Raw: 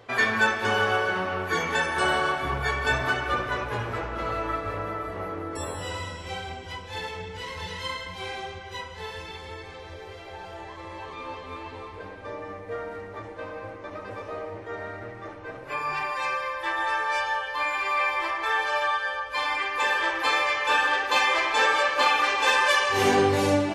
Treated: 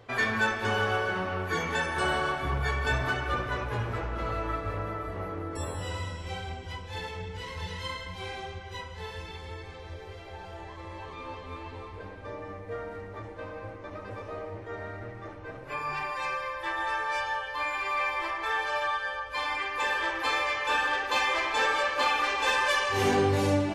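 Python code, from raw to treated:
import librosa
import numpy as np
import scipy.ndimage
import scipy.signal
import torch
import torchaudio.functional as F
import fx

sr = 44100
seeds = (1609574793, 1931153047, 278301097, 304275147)

p1 = fx.low_shelf(x, sr, hz=160.0, db=9.0)
p2 = np.clip(10.0 ** (21.0 / 20.0) * p1, -1.0, 1.0) / 10.0 ** (21.0 / 20.0)
p3 = p1 + (p2 * 10.0 ** (-10.0 / 20.0))
y = p3 * 10.0 ** (-6.5 / 20.0)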